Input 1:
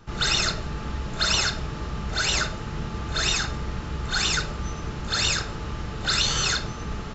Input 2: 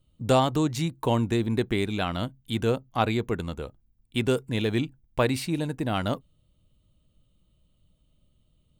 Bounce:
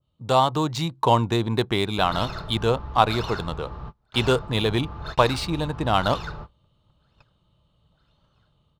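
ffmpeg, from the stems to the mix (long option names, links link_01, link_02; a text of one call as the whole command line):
ffmpeg -i stem1.wav -i stem2.wav -filter_complex "[0:a]lowpass=frequency=1000:poles=1,adelay=1900,volume=-5.5dB[link_01];[1:a]highpass=frequency=110:poles=1,dynaudnorm=framelen=280:gausssize=3:maxgain=8dB,volume=-3.5dB,asplit=2[link_02][link_03];[link_03]apad=whole_len=398780[link_04];[link_01][link_04]sidechaingate=range=-36dB:threshold=-59dB:ratio=16:detection=peak[link_05];[link_05][link_02]amix=inputs=2:normalize=0,equalizer=frequency=125:width_type=o:width=1:gain=3,equalizer=frequency=250:width_type=o:width=1:gain=-5,equalizer=frequency=1000:width_type=o:width=1:gain=9,equalizer=frequency=2000:width_type=o:width=1:gain=-4,equalizer=frequency=4000:width_type=o:width=1:gain=7,adynamicsmooth=sensitivity=5:basefreq=4500,adynamicequalizer=threshold=0.0251:dfrequency=1600:dqfactor=0.7:tfrequency=1600:tqfactor=0.7:attack=5:release=100:ratio=0.375:range=1.5:mode=cutabove:tftype=highshelf" out.wav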